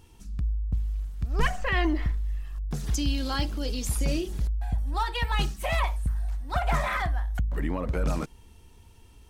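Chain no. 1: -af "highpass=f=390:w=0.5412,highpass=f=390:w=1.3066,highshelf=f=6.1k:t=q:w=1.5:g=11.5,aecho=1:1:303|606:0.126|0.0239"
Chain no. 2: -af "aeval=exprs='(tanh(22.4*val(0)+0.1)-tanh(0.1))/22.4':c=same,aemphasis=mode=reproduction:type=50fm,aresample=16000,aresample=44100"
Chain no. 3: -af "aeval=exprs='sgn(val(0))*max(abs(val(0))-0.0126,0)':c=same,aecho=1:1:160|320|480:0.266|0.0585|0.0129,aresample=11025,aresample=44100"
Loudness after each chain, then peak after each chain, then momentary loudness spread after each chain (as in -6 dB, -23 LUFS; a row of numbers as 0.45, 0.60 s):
-30.0, -34.0, -31.0 LUFS; -9.0, -25.5, -12.0 dBFS; 17, 4, 8 LU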